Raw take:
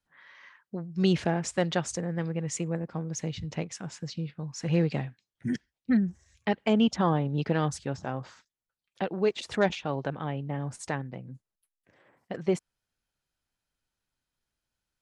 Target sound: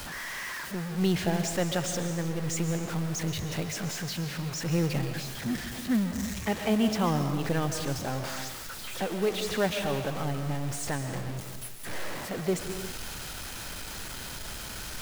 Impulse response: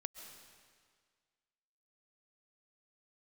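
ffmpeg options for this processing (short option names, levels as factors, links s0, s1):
-filter_complex "[0:a]aeval=exprs='val(0)+0.5*0.0376*sgn(val(0))':c=same[s0];[1:a]atrim=start_sample=2205,afade=t=out:st=0.43:d=0.01,atrim=end_sample=19404[s1];[s0][s1]afir=irnorm=-1:irlink=0,acrusher=bits=5:mode=log:mix=0:aa=0.000001"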